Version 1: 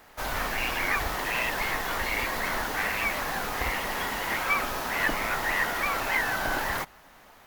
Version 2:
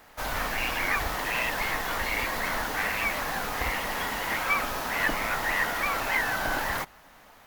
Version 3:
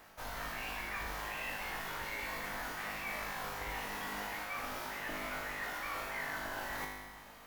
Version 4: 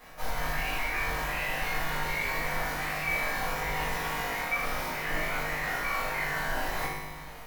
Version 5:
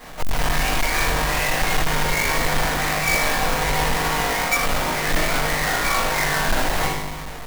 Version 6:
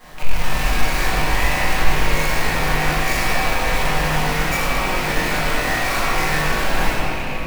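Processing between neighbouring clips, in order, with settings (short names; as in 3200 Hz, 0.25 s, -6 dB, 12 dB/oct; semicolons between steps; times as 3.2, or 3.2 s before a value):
notch 380 Hz, Q 12
reverse; compressor 5:1, threshold -38 dBFS, peak gain reduction 15.5 dB; reverse; resonator 51 Hz, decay 1.3 s, harmonics all, mix 90%; gain +11 dB
shoebox room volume 63 m³, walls mixed, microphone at 1.8 m
half-waves squared off; gain +6 dB
rattling part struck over -35 dBFS, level -16 dBFS; shoebox room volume 220 m³, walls hard, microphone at 0.99 m; gain -6 dB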